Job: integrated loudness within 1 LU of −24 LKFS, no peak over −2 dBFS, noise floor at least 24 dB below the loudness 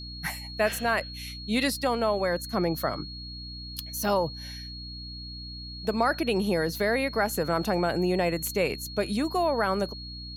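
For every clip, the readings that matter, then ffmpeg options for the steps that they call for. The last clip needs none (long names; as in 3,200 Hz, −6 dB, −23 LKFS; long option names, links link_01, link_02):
mains hum 60 Hz; hum harmonics up to 300 Hz; level of the hum −39 dBFS; interfering tone 4,300 Hz; level of the tone −40 dBFS; integrated loudness −28.0 LKFS; sample peak −12.0 dBFS; target loudness −24.0 LKFS
→ -af "bandreject=frequency=60:width_type=h:width=4,bandreject=frequency=120:width_type=h:width=4,bandreject=frequency=180:width_type=h:width=4,bandreject=frequency=240:width_type=h:width=4,bandreject=frequency=300:width_type=h:width=4"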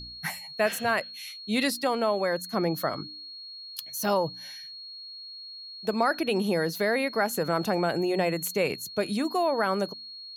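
mains hum none found; interfering tone 4,300 Hz; level of the tone −40 dBFS
→ -af "bandreject=frequency=4300:width=30"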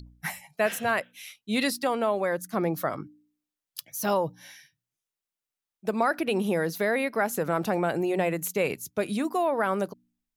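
interfering tone none found; integrated loudness −28.0 LKFS; sample peak −12.5 dBFS; target loudness −24.0 LKFS
→ -af "volume=4dB"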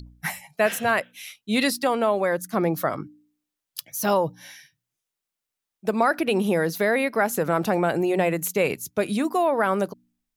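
integrated loudness −24.0 LKFS; sample peak −8.5 dBFS; background noise floor −86 dBFS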